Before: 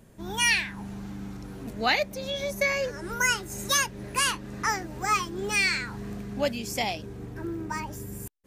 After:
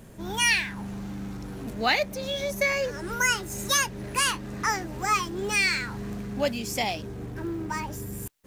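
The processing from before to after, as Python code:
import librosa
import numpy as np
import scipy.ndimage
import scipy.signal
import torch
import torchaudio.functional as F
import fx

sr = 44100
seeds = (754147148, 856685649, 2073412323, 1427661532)

y = fx.law_mismatch(x, sr, coded='mu')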